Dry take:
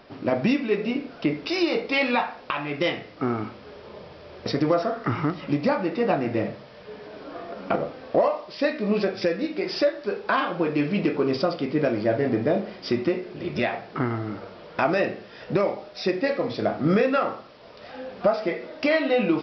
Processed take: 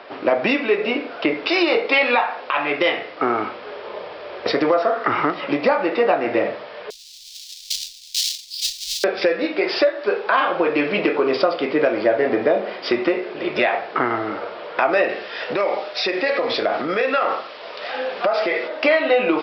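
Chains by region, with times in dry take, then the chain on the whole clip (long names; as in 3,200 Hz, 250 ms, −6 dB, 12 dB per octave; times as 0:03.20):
0:06.90–0:09.04: each half-wave held at its own peak + inverse Chebyshev band-stop filter 140–1,400 Hz, stop band 60 dB + bass and treble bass −3 dB, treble +9 dB
0:15.09–0:18.68: high-shelf EQ 2,200 Hz +8.5 dB + downward compressor, threshold −25 dBFS
whole clip: three-way crossover with the lows and the highs turned down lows −22 dB, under 370 Hz, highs −24 dB, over 4,300 Hz; downward compressor 3 to 1, threshold −27 dBFS; boost into a limiter +18 dB; level −5.5 dB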